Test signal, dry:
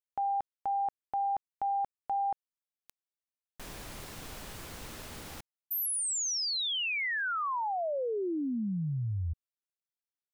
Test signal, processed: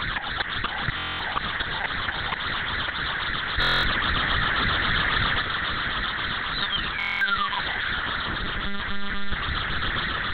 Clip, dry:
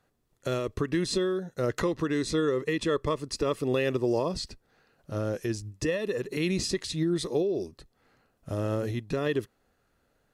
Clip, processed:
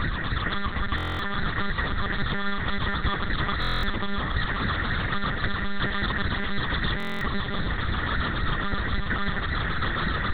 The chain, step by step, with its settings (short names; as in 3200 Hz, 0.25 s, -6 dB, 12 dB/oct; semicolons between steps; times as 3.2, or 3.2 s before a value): per-bin compression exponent 0.2; in parallel at -2.5 dB: level quantiser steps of 10 dB; on the sum: fixed phaser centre 2500 Hz, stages 6; requantised 6-bit, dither none; compressor 10:1, threshold -21 dBFS; phaser stages 8, 3.7 Hz, lowest notch 140–1000 Hz; bell 370 Hz -13.5 dB 1.4 oct; on a send: diffused feedback echo 0.688 s, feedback 44%, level -8 dB; on the sum: monotone LPC vocoder at 8 kHz 200 Hz; stuck buffer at 0.96/3.6/6.98, samples 1024, times 9; gain +7 dB